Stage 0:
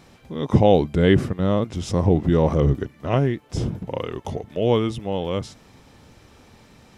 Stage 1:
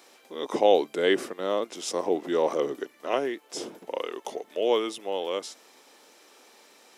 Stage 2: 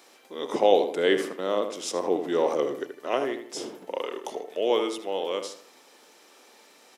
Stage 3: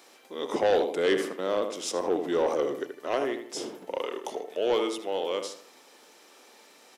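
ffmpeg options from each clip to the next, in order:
-af "highpass=f=340:w=0.5412,highpass=f=340:w=1.3066,highshelf=f=4.8k:g=9,volume=-3dB"
-filter_complex "[0:a]asplit=2[a][b];[b]adelay=78,lowpass=f=2.7k:p=1,volume=-7.5dB,asplit=2[c][d];[d]adelay=78,lowpass=f=2.7k:p=1,volume=0.39,asplit=2[e][f];[f]adelay=78,lowpass=f=2.7k:p=1,volume=0.39,asplit=2[g][h];[h]adelay=78,lowpass=f=2.7k:p=1,volume=0.39[i];[a][c][e][g][i]amix=inputs=5:normalize=0"
-af "asoftclip=type=tanh:threshold=-16.5dB"

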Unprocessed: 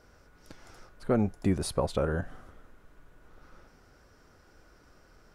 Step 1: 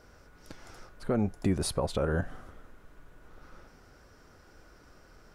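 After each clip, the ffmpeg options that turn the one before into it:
-af "alimiter=limit=-20dB:level=0:latency=1:release=144,volume=2.5dB"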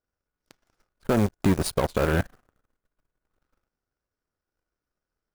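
-af "acrusher=bits=6:mode=log:mix=0:aa=0.000001,aeval=exprs='0.133*(cos(1*acos(clip(val(0)/0.133,-1,1)))-cos(1*PI/2))+0.0188*(cos(7*acos(clip(val(0)/0.133,-1,1)))-cos(7*PI/2))':c=same,volume=6dB"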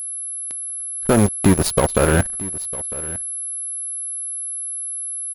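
-af "aeval=exprs='val(0)+0.0224*sin(2*PI*11000*n/s)':c=same,aecho=1:1:953:0.126,volume=7dB"

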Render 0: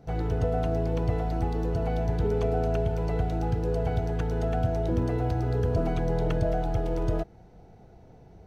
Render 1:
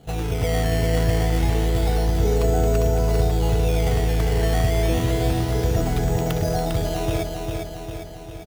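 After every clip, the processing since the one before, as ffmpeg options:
-filter_complex "[0:a]highshelf=f=3.7k:g=11.5,acrusher=samples=12:mix=1:aa=0.000001:lfo=1:lforange=12:lforate=0.29,asplit=2[a][b];[b]aecho=0:1:401|802|1203|1604|2005|2406|2807|3208:0.596|0.345|0.2|0.116|0.0674|0.0391|0.0227|0.0132[c];[a][c]amix=inputs=2:normalize=0,volume=3dB"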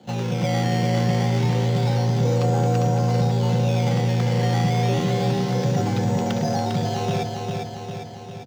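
-af "afreqshift=65,asoftclip=type=tanh:threshold=-11dB,highshelf=f=7.7k:t=q:w=1.5:g=-10"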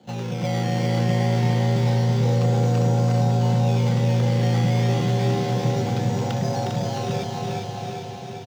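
-af "aecho=1:1:360|666|926.1|1147|1335:0.631|0.398|0.251|0.158|0.1,volume=-3.5dB"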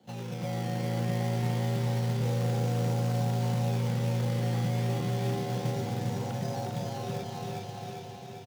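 -filter_complex "[0:a]acrossover=split=1800[a][b];[a]acrusher=bits=4:mode=log:mix=0:aa=0.000001[c];[b]alimiter=level_in=7dB:limit=-24dB:level=0:latency=1,volume=-7dB[d];[c][d]amix=inputs=2:normalize=0,volume=-9dB"

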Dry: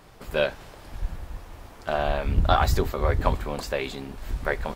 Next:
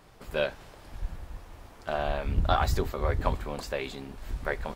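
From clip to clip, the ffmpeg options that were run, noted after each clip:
-af "equalizer=f=14k:t=o:w=0.24:g=-2.5,volume=-4.5dB"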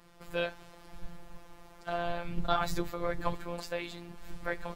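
-af "afftfilt=real='hypot(re,im)*cos(PI*b)':imag='0':win_size=1024:overlap=0.75"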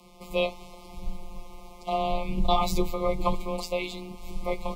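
-af "afreqshift=15,asuperstop=centerf=1600:order=20:qfactor=1.9,volume=7dB"

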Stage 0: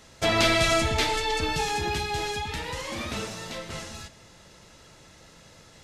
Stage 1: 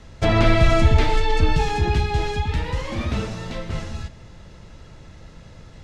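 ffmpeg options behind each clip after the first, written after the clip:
-filter_complex "[0:a]aemphasis=mode=reproduction:type=bsi,acrossover=split=580|2200[a][b][c];[c]alimiter=level_in=4dB:limit=-24dB:level=0:latency=1:release=38,volume=-4dB[d];[a][b][d]amix=inputs=3:normalize=0,volume=3dB"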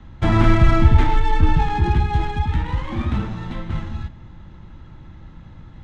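-filter_complex "[0:a]acrossover=split=260|2200[a][b][c];[c]acompressor=threshold=-42dB:ratio=10[d];[a][b][d]amix=inputs=3:normalize=0,superequalizer=7b=0.316:8b=0.355:13b=1.78:15b=1.78,adynamicsmooth=sensitivity=2:basefreq=1.8k,volume=3dB"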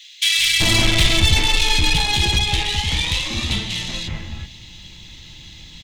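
-filter_complex "[0:a]aexciter=amount=11.7:drive=9.4:freq=2.2k,aeval=exprs='(tanh(2.51*val(0)+0.5)-tanh(0.5))/2.51':c=same,acrossover=split=1900[a][b];[a]adelay=380[c];[c][b]amix=inputs=2:normalize=0,volume=-1dB"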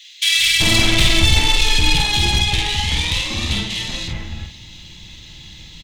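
-filter_complex "[0:a]asplit=2[a][b];[b]adelay=49,volume=-4.5dB[c];[a][c]amix=inputs=2:normalize=0"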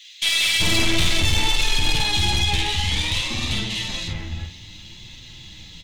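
-af "aeval=exprs='(tanh(3.98*val(0)+0.15)-tanh(0.15))/3.98':c=same,flanger=delay=7.5:depth=5:regen=44:speed=0.58:shape=triangular,volume=2dB"

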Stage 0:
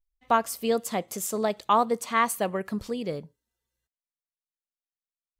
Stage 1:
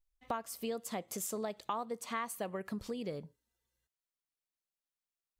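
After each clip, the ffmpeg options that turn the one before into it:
-af "acompressor=threshold=-36dB:ratio=4,volume=-1dB"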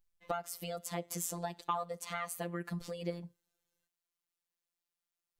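-af "afftfilt=real='hypot(re,im)*cos(PI*b)':imag='0':win_size=1024:overlap=0.75,volume=4.5dB"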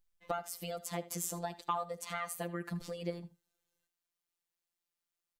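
-af "aecho=1:1:78:0.133"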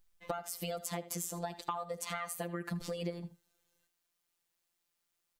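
-af "acompressor=threshold=-41dB:ratio=6,volume=7dB"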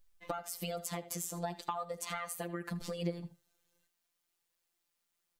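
-af "flanger=delay=1.7:depth=5.9:regen=69:speed=0.44:shape=triangular,volume=4dB"

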